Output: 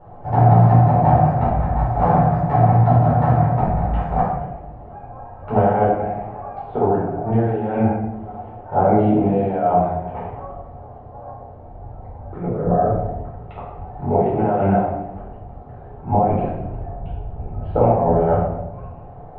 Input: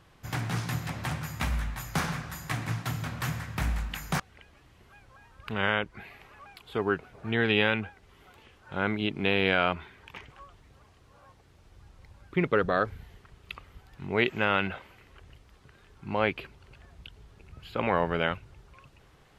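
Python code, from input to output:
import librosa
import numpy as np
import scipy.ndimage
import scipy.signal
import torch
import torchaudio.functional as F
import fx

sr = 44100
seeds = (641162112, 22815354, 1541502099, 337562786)

y = fx.low_shelf(x, sr, hz=110.0, db=9.5, at=(16.12, 18.33))
y = fx.over_compress(y, sr, threshold_db=-30.0, ratio=-0.5)
y = fx.lowpass_res(y, sr, hz=720.0, q=8.1)
y = fx.room_shoebox(y, sr, seeds[0], volume_m3=320.0, walls='mixed', distance_m=4.4)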